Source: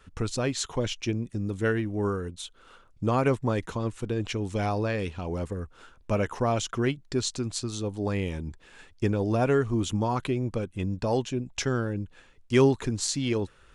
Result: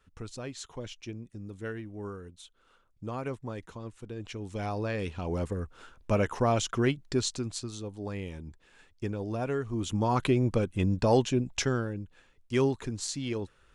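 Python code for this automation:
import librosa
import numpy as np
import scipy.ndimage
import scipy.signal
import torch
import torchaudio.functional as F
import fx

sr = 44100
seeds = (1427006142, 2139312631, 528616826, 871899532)

y = fx.gain(x, sr, db=fx.line((4.05, -11.5), (5.33, 0.0), (7.13, 0.0), (7.89, -8.0), (9.64, -8.0), (10.24, 3.0), (11.45, 3.0), (12.0, -6.0)))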